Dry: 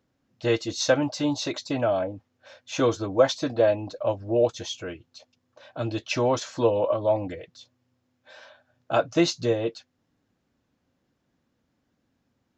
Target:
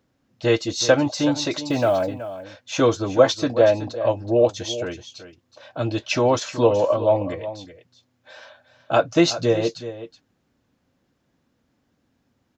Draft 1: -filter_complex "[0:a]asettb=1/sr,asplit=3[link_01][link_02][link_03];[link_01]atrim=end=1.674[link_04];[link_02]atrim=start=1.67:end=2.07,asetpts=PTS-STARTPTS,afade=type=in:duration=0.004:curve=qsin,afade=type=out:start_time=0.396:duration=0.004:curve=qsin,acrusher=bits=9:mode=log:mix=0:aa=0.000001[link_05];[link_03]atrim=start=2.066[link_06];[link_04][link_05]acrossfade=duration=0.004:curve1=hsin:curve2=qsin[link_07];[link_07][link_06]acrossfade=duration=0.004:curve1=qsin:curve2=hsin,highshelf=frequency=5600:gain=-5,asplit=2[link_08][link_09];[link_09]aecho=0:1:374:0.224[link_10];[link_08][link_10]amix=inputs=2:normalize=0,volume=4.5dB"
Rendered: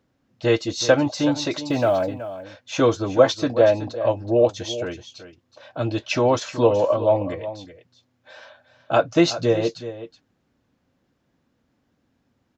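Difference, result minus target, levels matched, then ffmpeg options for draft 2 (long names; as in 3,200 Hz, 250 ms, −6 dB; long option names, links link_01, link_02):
8,000 Hz band −2.5 dB
-filter_complex "[0:a]asettb=1/sr,asplit=3[link_01][link_02][link_03];[link_01]atrim=end=1.674[link_04];[link_02]atrim=start=1.67:end=2.07,asetpts=PTS-STARTPTS,afade=type=in:duration=0.004:curve=qsin,afade=type=out:start_time=0.396:duration=0.004:curve=qsin,acrusher=bits=9:mode=log:mix=0:aa=0.000001[link_05];[link_03]atrim=start=2.066[link_06];[link_04][link_05]acrossfade=duration=0.004:curve1=hsin:curve2=qsin[link_07];[link_07][link_06]acrossfade=duration=0.004:curve1=qsin:curve2=hsin,asplit=2[link_08][link_09];[link_09]aecho=0:1:374:0.224[link_10];[link_08][link_10]amix=inputs=2:normalize=0,volume=4.5dB"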